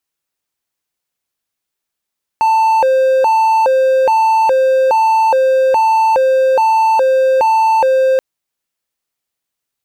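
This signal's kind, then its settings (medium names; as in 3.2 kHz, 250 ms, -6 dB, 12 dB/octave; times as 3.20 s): siren hi-lo 525–888 Hz 1.2 per s triangle -6.5 dBFS 5.78 s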